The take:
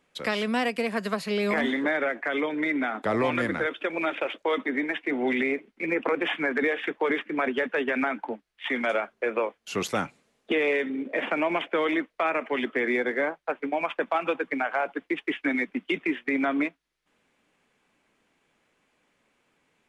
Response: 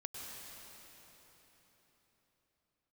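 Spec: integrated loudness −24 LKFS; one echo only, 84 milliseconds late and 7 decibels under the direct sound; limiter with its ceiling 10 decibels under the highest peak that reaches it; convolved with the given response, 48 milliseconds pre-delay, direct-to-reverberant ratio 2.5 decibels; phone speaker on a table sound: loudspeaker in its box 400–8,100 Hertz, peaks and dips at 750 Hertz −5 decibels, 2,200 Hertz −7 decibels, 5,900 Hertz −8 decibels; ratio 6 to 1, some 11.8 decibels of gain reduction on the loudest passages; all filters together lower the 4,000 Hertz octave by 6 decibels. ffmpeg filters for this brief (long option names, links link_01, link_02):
-filter_complex "[0:a]equalizer=frequency=4000:width_type=o:gain=-7,acompressor=threshold=-35dB:ratio=6,alimiter=level_in=8dB:limit=-24dB:level=0:latency=1,volume=-8dB,aecho=1:1:84:0.447,asplit=2[link_01][link_02];[1:a]atrim=start_sample=2205,adelay=48[link_03];[link_02][link_03]afir=irnorm=-1:irlink=0,volume=-1.5dB[link_04];[link_01][link_04]amix=inputs=2:normalize=0,highpass=frequency=400:width=0.5412,highpass=frequency=400:width=1.3066,equalizer=frequency=750:width_type=q:width=4:gain=-5,equalizer=frequency=2200:width_type=q:width=4:gain=-7,equalizer=frequency=5900:width_type=q:width=4:gain=-8,lowpass=frequency=8100:width=0.5412,lowpass=frequency=8100:width=1.3066,volume=19dB"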